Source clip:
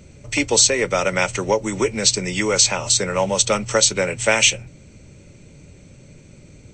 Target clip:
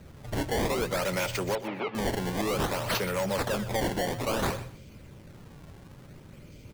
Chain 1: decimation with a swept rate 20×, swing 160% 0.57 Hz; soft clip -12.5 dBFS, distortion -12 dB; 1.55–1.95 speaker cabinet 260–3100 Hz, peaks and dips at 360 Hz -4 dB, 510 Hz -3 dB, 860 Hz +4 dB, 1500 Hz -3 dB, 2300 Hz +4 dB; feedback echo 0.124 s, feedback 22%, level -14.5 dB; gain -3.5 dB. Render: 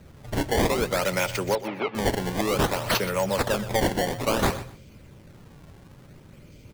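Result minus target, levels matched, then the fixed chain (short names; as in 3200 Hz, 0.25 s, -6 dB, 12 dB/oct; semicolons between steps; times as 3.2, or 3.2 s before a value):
soft clip: distortion -7 dB
decimation with a swept rate 20×, swing 160% 0.57 Hz; soft clip -21.5 dBFS, distortion -6 dB; 1.55–1.95 speaker cabinet 260–3100 Hz, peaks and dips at 360 Hz -4 dB, 510 Hz -3 dB, 860 Hz +4 dB, 1500 Hz -3 dB, 2300 Hz +4 dB; feedback echo 0.124 s, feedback 22%, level -14.5 dB; gain -3.5 dB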